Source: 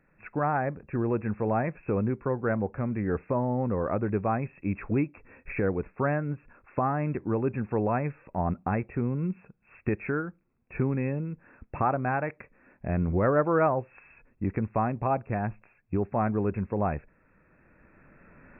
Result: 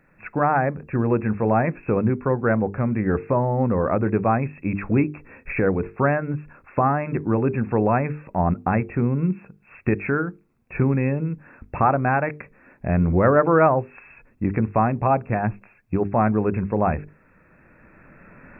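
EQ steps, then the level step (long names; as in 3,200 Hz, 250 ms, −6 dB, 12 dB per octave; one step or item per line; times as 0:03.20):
bass and treble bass +8 dB, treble 0 dB
low-shelf EQ 200 Hz −10.5 dB
mains-hum notches 50/100/150/200/250/300/350/400/450 Hz
+8.0 dB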